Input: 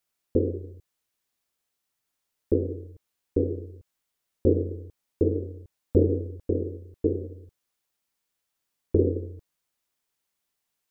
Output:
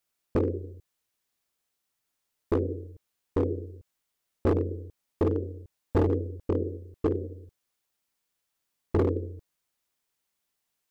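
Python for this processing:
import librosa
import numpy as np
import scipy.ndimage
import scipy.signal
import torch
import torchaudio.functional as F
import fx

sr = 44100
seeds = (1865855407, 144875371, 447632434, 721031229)

y = np.clip(10.0 ** (18.5 / 20.0) * x, -1.0, 1.0) / 10.0 ** (18.5 / 20.0)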